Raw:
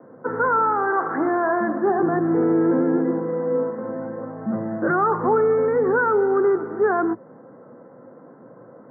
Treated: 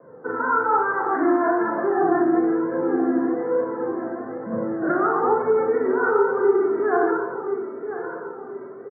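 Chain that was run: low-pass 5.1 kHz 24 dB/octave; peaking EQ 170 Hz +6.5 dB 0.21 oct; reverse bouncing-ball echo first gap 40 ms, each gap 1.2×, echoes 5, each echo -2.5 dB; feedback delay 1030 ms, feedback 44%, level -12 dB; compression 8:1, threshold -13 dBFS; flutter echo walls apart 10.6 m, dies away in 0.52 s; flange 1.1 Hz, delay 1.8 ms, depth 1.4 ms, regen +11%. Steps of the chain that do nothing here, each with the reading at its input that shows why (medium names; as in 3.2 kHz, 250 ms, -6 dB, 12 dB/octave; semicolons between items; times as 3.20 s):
low-pass 5.1 kHz: input has nothing above 1.8 kHz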